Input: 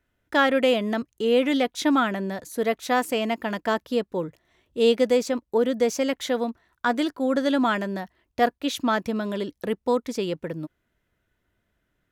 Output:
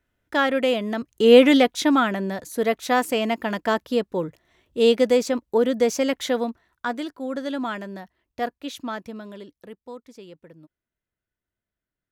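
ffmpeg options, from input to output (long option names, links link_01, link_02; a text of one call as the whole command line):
ffmpeg -i in.wav -af "volume=9dB,afade=type=in:start_time=0.99:duration=0.35:silence=0.316228,afade=type=out:start_time=1.34:duration=0.53:silence=0.446684,afade=type=out:start_time=6.3:duration=0.72:silence=0.398107,afade=type=out:start_time=8.58:duration=1.23:silence=0.316228" out.wav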